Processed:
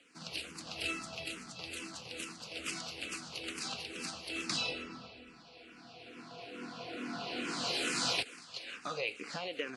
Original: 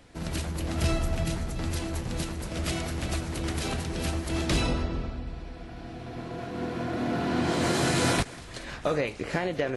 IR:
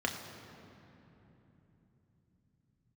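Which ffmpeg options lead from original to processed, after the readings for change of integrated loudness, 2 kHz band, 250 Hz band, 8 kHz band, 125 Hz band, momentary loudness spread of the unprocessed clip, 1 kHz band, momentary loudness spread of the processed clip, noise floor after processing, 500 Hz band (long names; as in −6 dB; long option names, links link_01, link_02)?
−8.5 dB, −5.0 dB, −14.5 dB, −6.0 dB, −23.0 dB, 13 LU, −10.0 dB, 17 LU, −56 dBFS, −13.0 dB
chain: -filter_complex "[0:a]highpass=340,equalizer=frequency=360:width_type=q:width=4:gain=-8,equalizer=frequency=620:width_type=q:width=4:gain=-9,equalizer=frequency=910:width_type=q:width=4:gain=-7,equalizer=frequency=1800:width_type=q:width=4:gain=-6,equalizer=frequency=2700:width_type=q:width=4:gain=8,equalizer=frequency=4600:width_type=q:width=4:gain=7,lowpass=frequency=9800:width=0.5412,lowpass=frequency=9800:width=1.3066,asplit=2[link_01][link_02];[link_02]afreqshift=-2.3[link_03];[link_01][link_03]amix=inputs=2:normalize=1,volume=-3dB"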